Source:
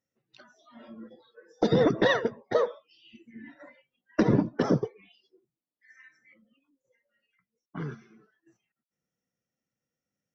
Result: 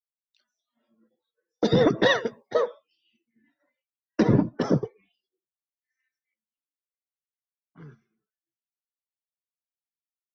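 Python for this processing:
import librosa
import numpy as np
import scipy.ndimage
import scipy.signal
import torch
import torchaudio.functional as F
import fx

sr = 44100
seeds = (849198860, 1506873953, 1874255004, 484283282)

y = fx.band_widen(x, sr, depth_pct=100)
y = y * 10.0 ** (-2.5 / 20.0)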